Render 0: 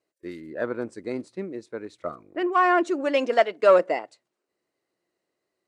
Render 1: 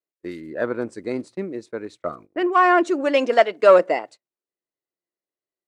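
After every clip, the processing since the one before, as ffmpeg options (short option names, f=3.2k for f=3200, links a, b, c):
-af "agate=range=-20dB:threshold=-46dB:ratio=16:detection=peak,volume=4dB"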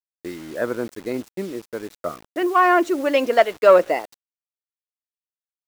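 -af "acrusher=bits=6:mix=0:aa=0.000001"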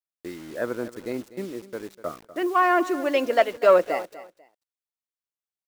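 -af "aecho=1:1:246|492:0.158|0.0333,volume=-4dB"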